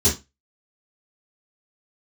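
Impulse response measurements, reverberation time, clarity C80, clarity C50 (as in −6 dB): 0.25 s, 19.0 dB, 9.0 dB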